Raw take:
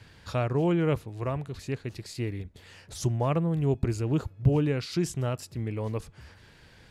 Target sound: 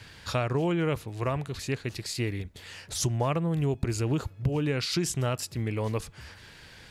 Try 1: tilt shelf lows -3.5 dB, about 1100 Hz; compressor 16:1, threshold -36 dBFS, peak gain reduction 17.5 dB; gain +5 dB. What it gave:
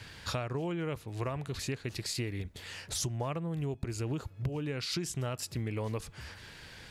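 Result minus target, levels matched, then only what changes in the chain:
compressor: peak gain reduction +8 dB
change: compressor 16:1, threshold -27.5 dBFS, peak gain reduction 9.5 dB

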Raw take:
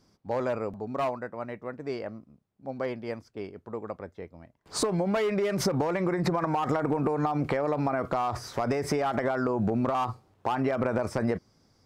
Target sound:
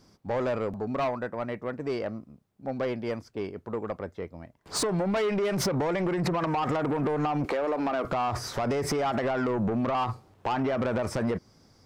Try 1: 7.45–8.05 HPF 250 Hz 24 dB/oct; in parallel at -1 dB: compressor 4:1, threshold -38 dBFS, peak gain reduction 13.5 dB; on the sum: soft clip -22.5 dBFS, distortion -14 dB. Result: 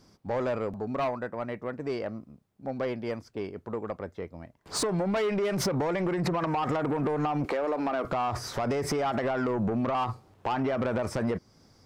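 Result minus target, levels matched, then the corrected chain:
compressor: peak gain reduction +6 dB
7.45–8.05 HPF 250 Hz 24 dB/oct; in parallel at -1 dB: compressor 4:1, threshold -30 dBFS, peak gain reduction 7.5 dB; on the sum: soft clip -22.5 dBFS, distortion -13 dB

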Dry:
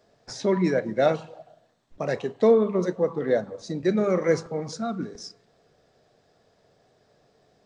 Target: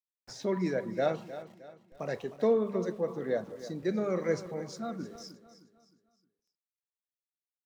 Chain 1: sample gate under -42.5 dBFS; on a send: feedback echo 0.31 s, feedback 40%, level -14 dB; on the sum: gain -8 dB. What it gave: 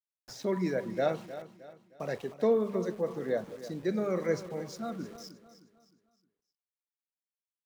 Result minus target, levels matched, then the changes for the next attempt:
sample gate: distortion +8 dB
change: sample gate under -50 dBFS

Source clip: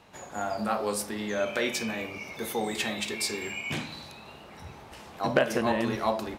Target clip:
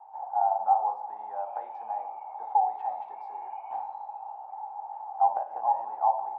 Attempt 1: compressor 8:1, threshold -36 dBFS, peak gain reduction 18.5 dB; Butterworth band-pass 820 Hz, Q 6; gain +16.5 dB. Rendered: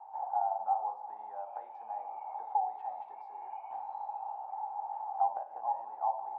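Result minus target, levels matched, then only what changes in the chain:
compressor: peak gain reduction +8 dB
change: compressor 8:1, threshold -27 dBFS, peak gain reduction 10.5 dB

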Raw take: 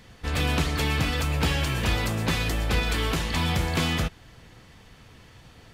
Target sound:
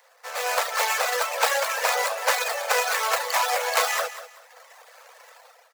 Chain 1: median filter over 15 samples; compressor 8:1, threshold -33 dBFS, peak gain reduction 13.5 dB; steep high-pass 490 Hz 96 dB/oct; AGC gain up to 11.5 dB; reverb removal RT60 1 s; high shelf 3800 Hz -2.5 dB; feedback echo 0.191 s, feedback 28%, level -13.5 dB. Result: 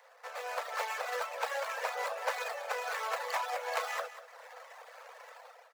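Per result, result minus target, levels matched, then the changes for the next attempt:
compressor: peak gain reduction +13.5 dB; 8000 Hz band -6.5 dB
remove: compressor 8:1, threshold -33 dBFS, peak gain reduction 13.5 dB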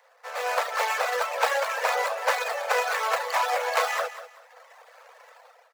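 8000 Hz band -6.5 dB
change: high shelf 3800 Hz +9 dB

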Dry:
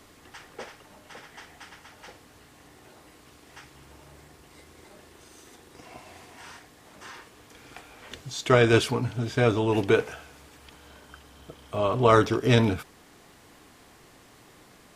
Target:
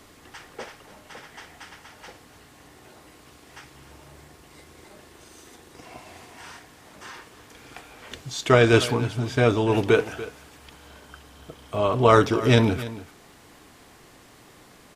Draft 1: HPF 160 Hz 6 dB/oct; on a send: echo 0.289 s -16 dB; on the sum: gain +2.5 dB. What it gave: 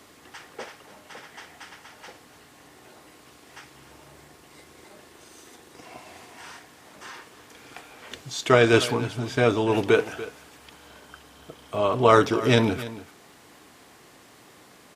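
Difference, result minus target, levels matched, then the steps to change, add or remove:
125 Hz band -3.5 dB
remove: HPF 160 Hz 6 dB/oct

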